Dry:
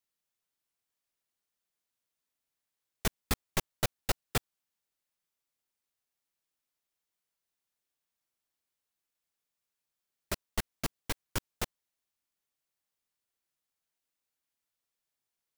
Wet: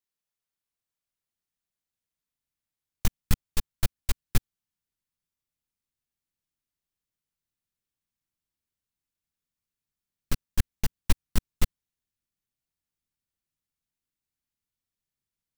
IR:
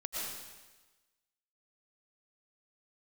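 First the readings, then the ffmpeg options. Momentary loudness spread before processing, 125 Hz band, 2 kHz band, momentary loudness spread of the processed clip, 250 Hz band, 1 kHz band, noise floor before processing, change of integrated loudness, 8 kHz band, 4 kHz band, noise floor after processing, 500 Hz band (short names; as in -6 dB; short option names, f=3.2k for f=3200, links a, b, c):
7 LU, +7.5 dB, -1.0 dB, 6 LU, +4.0 dB, -3.5 dB, under -85 dBFS, +3.0 dB, +1.0 dB, 0.0 dB, under -85 dBFS, -5.0 dB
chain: -af "aeval=exprs='0.2*(cos(1*acos(clip(val(0)/0.2,-1,1)))-cos(1*PI/2))+0.0126*(cos(5*acos(clip(val(0)/0.2,-1,1)))-cos(5*PI/2))+0.1*(cos(8*acos(clip(val(0)/0.2,-1,1)))-cos(8*PI/2))':c=same,asubboost=boost=4.5:cutoff=250,volume=-6.5dB"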